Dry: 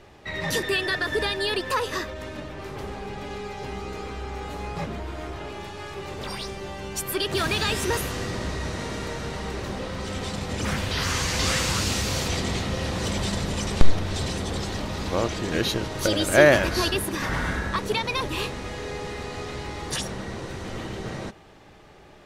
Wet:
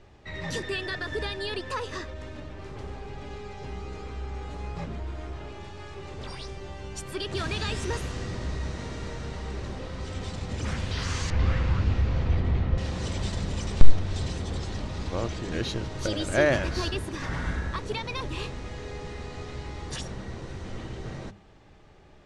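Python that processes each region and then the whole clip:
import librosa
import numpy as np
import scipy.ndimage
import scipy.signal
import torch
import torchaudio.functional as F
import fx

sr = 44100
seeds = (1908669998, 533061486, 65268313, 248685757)

y = fx.chain(x, sr, fx.lowpass(hz=2100.0, slope=12),
    fx.low_shelf(hz=94.0, db=11.0), at=(11.3, 12.78))
y = scipy.signal.sosfilt(scipy.signal.butter(4, 8700.0, 'lowpass', fs=sr, output='sos'), y)
y = fx.low_shelf(y, sr, hz=150.0, db=10.5)
y = fx.hum_notches(y, sr, base_hz=50, count=4)
y = y * librosa.db_to_amplitude(-7.5)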